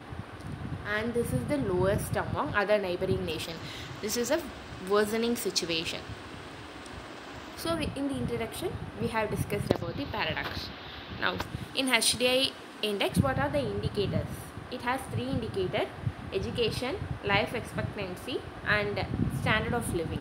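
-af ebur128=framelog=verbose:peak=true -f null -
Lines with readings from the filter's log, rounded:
Integrated loudness:
  I:         -30.4 LUFS
  Threshold: -40.8 LUFS
Loudness range:
  LRA:         4.9 LU
  Threshold: -50.8 LUFS
  LRA low:   -33.1 LUFS
  LRA high:  -28.2 LUFS
True peak:
  Peak:       -4.2 dBFS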